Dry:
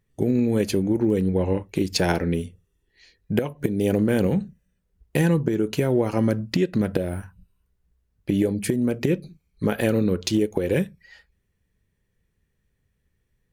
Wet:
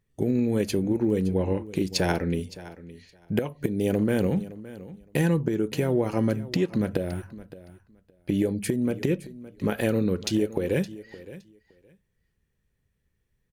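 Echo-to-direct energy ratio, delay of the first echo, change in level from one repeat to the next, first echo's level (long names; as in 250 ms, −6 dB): −17.0 dB, 566 ms, −16.0 dB, −17.0 dB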